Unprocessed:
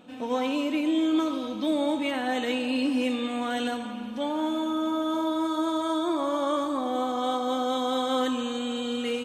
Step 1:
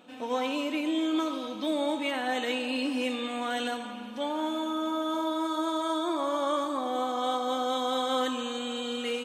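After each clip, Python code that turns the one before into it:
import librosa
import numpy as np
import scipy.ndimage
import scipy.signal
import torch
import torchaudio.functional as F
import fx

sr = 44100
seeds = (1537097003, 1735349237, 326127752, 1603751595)

y = fx.low_shelf(x, sr, hz=230.0, db=-12.0)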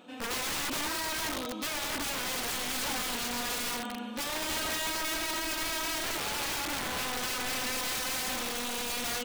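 y = fx.rider(x, sr, range_db=4, speed_s=2.0)
y = (np.mod(10.0 ** (28.5 / 20.0) * y + 1.0, 2.0) - 1.0) / 10.0 ** (28.5 / 20.0)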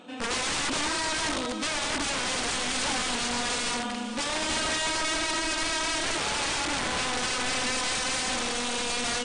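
y = fx.brickwall_lowpass(x, sr, high_hz=9800.0)
y = y + 10.0 ** (-13.5 / 20.0) * np.pad(y, (int(451 * sr / 1000.0), 0))[:len(y)]
y = F.gain(torch.from_numpy(y), 5.0).numpy()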